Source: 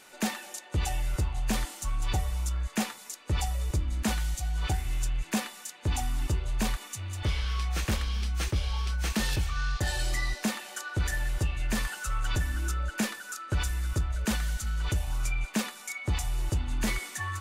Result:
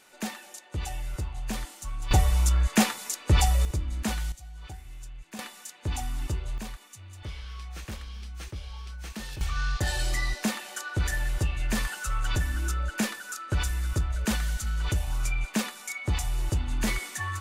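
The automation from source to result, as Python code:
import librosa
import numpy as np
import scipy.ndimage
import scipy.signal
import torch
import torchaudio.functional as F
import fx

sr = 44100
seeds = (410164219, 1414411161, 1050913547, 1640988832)

y = fx.gain(x, sr, db=fx.steps((0.0, -4.0), (2.11, 8.0), (3.65, -1.0), (4.32, -13.0), (5.39, -2.0), (6.58, -9.5), (9.41, 1.5)))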